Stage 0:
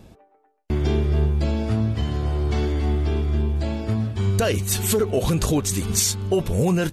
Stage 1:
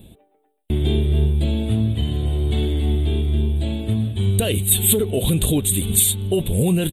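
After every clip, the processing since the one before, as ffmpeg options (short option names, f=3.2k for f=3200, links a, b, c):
-af "firequalizer=gain_entry='entry(240,0);entry(1200,-14);entry(3600,8);entry(5200,-29);entry(8400,8)':delay=0.05:min_phase=1,volume=2.5dB"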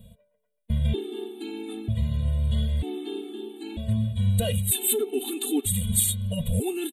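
-af "afftfilt=real='re*gt(sin(2*PI*0.53*pts/sr)*(1-2*mod(floor(b*sr/1024/230),2)),0)':imag='im*gt(sin(2*PI*0.53*pts/sr)*(1-2*mod(floor(b*sr/1024/230),2)),0)':win_size=1024:overlap=0.75,volume=-3.5dB"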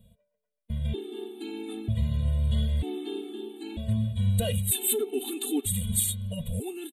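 -af "dynaudnorm=f=310:g=7:m=7.5dB,volume=-8.5dB"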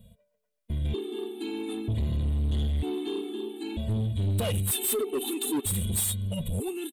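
-af "asoftclip=type=tanh:threshold=-27.5dB,volume=4dB"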